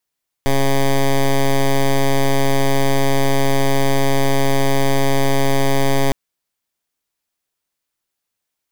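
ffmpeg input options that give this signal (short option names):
-f lavfi -i "aevalsrc='0.2*(2*lt(mod(137*t,1),0.1)-1)':d=5.66:s=44100"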